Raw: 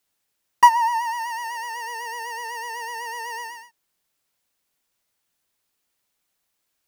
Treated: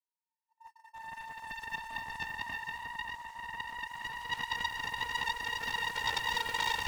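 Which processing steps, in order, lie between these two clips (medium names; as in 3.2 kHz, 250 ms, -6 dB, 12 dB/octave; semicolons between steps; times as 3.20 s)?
compressor with a negative ratio -25 dBFS, ratio -0.5; ladder high-pass 370 Hz, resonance 25%; Paulstretch 15×, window 0.25 s, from 0.59 s; crackle 150 per s -55 dBFS; gate -45 dBFS, range -38 dB; loudspeaker Doppler distortion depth 0.94 ms; trim -4.5 dB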